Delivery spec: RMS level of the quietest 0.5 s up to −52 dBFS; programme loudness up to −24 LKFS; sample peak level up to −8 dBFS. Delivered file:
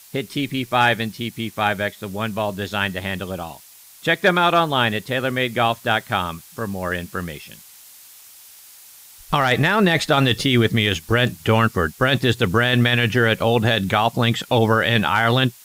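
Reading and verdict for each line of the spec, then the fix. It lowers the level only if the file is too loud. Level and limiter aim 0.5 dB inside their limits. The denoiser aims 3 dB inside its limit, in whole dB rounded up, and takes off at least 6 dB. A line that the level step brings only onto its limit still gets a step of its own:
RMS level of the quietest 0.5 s −45 dBFS: out of spec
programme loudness −19.5 LKFS: out of spec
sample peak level −4.5 dBFS: out of spec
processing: broadband denoise 6 dB, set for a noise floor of −45 dBFS
level −5 dB

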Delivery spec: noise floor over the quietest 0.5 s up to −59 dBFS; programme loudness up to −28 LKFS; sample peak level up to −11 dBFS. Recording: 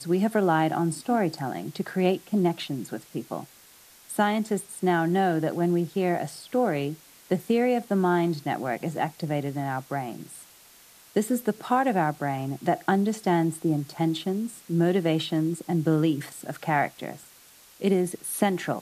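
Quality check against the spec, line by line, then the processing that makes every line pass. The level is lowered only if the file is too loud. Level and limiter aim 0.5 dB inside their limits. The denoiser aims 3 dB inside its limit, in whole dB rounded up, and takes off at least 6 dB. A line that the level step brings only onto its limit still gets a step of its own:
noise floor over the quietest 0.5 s −53 dBFS: out of spec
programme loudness −26.5 LKFS: out of spec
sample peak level −9.5 dBFS: out of spec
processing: broadband denoise 7 dB, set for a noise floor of −53 dBFS
level −2 dB

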